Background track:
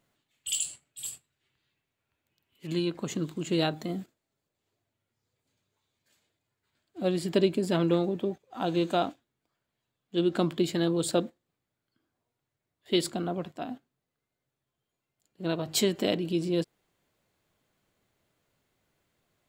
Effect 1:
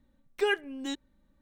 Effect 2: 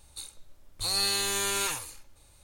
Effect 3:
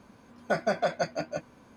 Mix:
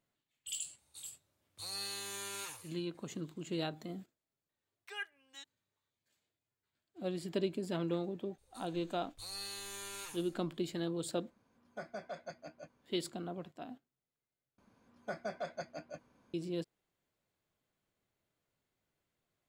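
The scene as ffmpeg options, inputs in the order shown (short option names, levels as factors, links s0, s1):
-filter_complex "[2:a]asplit=2[s0][s1];[3:a]asplit=2[s2][s3];[0:a]volume=0.299[s4];[s0]highpass=f=85:w=0.5412,highpass=f=85:w=1.3066[s5];[1:a]highpass=1100[s6];[s4]asplit=2[s7][s8];[s7]atrim=end=14.584[s9];[s3]atrim=end=1.76,asetpts=PTS-STARTPTS,volume=0.211[s10];[s8]atrim=start=16.336[s11];[s5]atrim=end=2.43,asetpts=PTS-STARTPTS,volume=0.2,afade=t=in:d=0.004:c=hsin,afade=t=out:st=2.426:d=0.004:c=hsin,adelay=780[s12];[s6]atrim=end=1.41,asetpts=PTS-STARTPTS,volume=0.282,afade=t=in:d=0.004:c=hsin,afade=t=out:st=1.406:d=0.004:c=hsin,adelay=198009S[s13];[s1]atrim=end=2.43,asetpts=PTS-STARTPTS,volume=0.15,afade=t=in:d=0.004:c=hsin,afade=t=out:st=2.426:d=0.004:c=hsin,adelay=8380[s14];[s2]atrim=end=1.76,asetpts=PTS-STARTPTS,volume=0.133,afade=t=in:d=0.004:c=hsin,afade=t=out:st=1.756:d=0.004:c=hsin,adelay=11270[s15];[s9][s10]acrossfade=d=0.004:c1=hsin:c2=hsin[s16];[s16][s11]acrossfade=d=0.004:c1=hsin:c2=hsin[s17];[s17][s12][s13][s14][s15]amix=inputs=5:normalize=0"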